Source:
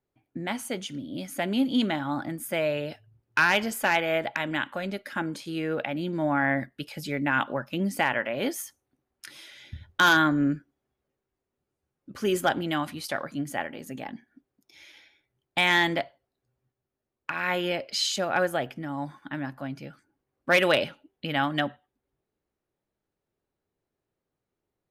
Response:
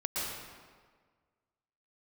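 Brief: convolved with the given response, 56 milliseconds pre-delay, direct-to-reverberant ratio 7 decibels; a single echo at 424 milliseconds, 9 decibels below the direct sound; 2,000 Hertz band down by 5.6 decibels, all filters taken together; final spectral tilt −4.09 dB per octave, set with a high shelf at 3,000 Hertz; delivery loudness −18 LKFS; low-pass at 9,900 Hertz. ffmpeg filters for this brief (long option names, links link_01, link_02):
-filter_complex "[0:a]lowpass=9900,equalizer=frequency=2000:width_type=o:gain=-4.5,highshelf=frequency=3000:gain=-9,aecho=1:1:424:0.355,asplit=2[link_01][link_02];[1:a]atrim=start_sample=2205,adelay=56[link_03];[link_02][link_03]afir=irnorm=-1:irlink=0,volume=-12.5dB[link_04];[link_01][link_04]amix=inputs=2:normalize=0,volume=11dB"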